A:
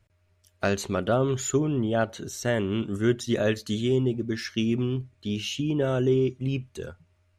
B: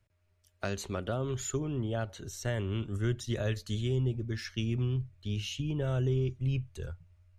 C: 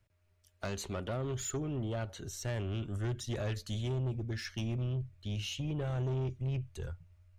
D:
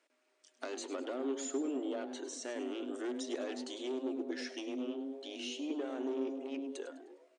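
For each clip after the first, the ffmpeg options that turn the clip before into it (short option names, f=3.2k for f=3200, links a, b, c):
-filter_complex "[0:a]asubboost=boost=10:cutoff=79,acrossover=split=220|3000[a][b][c];[b]acompressor=threshold=-25dB:ratio=6[d];[a][d][c]amix=inputs=3:normalize=0,volume=-6.5dB"
-af "asoftclip=type=tanh:threshold=-30dB"
-filter_complex "[0:a]acrossover=split=350[a][b];[b]acompressor=threshold=-55dB:ratio=2[c];[a][c]amix=inputs=2:normalize=0,asplit=5[d][e][f][g][h];[e]adelay=102,afreqshift=140,volume=-13.5dB[i];[f]adelay=204,afreqshift=280,volume=-21.2dB[j];[g]adelay=306,afreqshift=420,volume=-29dB[k];[h]adelay=408,afreqshift=560,volume=-36.7dB[l];[d][i][j][k][l]amix=inputs=5:normalize=0,afftfilt=real='re*between(b*sr/4096,240,9500)':imag='im*between(b*sr/4096,240,9500)':win_size=4096:overlap=0.75,volume=6dB"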